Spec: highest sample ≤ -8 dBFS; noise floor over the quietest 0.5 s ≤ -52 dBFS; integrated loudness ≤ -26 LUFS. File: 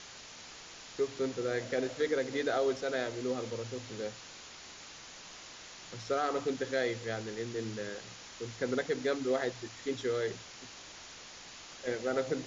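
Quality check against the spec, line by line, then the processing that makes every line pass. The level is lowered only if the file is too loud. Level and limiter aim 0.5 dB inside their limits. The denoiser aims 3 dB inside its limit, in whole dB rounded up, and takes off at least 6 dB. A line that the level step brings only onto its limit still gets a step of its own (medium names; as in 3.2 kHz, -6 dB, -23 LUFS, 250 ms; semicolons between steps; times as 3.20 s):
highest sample -19.5 dBFS: pass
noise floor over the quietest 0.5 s -50 dBFS: fail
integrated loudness -35.0 LUFS: pass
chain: noise reduction 6 dB, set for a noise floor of -50 dBFS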